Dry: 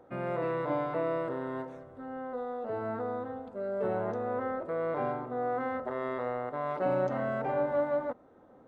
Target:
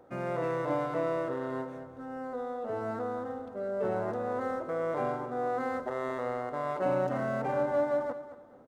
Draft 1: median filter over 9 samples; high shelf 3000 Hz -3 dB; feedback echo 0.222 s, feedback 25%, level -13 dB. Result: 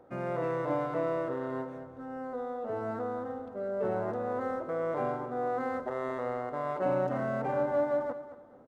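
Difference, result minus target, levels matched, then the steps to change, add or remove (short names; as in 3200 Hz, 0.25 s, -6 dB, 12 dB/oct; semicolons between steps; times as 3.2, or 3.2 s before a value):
8000 Hz band -5.5 dB
change: high shelf 3000 Hz +3.5 dB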